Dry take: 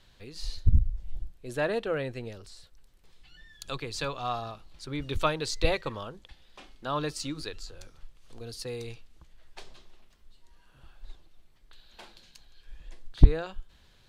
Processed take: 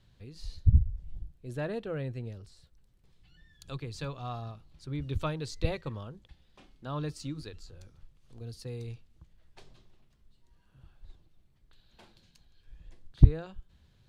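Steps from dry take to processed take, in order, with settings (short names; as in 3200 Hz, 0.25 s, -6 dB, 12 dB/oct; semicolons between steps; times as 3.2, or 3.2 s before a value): bell 110 Hz +14 dB 2.7 oct; gain -10 dB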